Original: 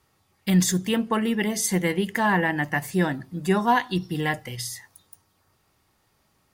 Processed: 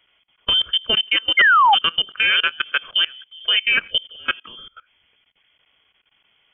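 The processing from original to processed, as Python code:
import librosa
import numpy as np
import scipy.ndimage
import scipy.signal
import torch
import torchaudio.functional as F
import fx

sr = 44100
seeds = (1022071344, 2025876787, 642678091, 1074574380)

y = fx.freq_invert(x, sr, carrier_hz=3300)
y = fx.level_steps(y, sr, step_db=23)
y = fx.spec_paint(y, sr, seeds[0], shape='fall', start_s=1.37, length_s=0.38, low_hz=760.0, high_hz=2200.0, level_db=-19.0)
y = y * 10.0 ** (6.5 / 20.0)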